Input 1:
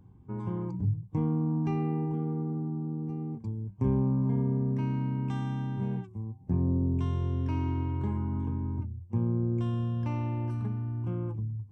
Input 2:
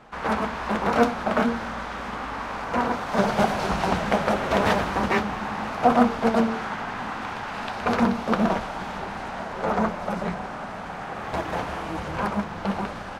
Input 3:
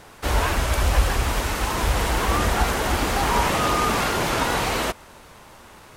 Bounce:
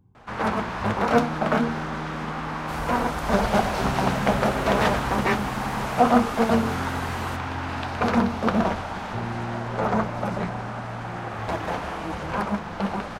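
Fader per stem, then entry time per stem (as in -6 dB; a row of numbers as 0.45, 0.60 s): -4.5, 0.0, -13.0 dB; 0.00, 0.15, 2.45 s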